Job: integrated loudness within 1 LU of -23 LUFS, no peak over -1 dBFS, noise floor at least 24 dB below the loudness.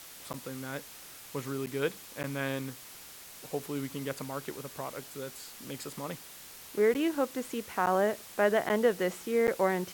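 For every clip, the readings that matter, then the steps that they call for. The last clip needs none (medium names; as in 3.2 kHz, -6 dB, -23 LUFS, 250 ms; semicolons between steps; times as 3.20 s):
dropouts 7; longest dropout 9.1 ms; noise floor -49 dBFS; noise floor target -57 dBFS; loudness -32.5 LUFS; peak level -13.5 dBFS; loudness target -23.0 LUFS
-> interpolate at 0.33/1.66/2.23/6.94/7.86/8.69/9.47 s, 9.1 ms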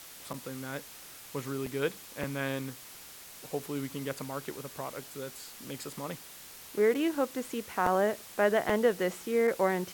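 dropouts 0; noise floor -49 dBFS; noise floor target -57 dBFS
-> noise print and reduce 8 dB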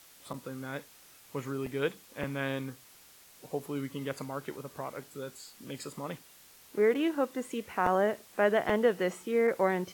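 noise floor -57 dBFS; loudness -32.0 LUFS; peak level -13.5 dBFS; loudness target -23.0 LUFS
-> trim +9 dB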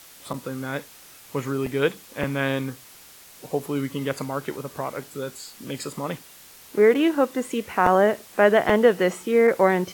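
loudness -23.0 LUFS; peak level -4.5 dBFS; noise floor -48 dBFS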